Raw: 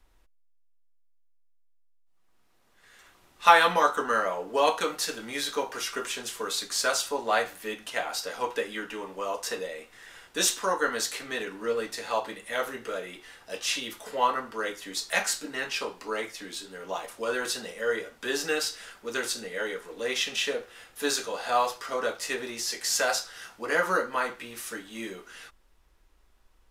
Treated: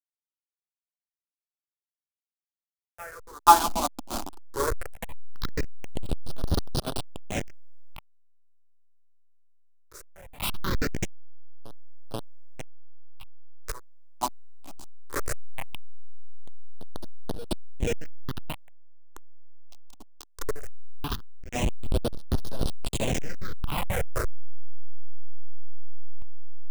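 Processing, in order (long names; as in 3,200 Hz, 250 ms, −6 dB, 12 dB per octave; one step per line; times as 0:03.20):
hold until the input has moved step −16.5 dBFS
backwards echo 484 ms −14 dB
all-pass phaser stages 6, 0.19 Hz, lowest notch 120–2,200 Hz
expander for the loud parts 1.5 to 1, over −36 dBFS
level +4.5 dB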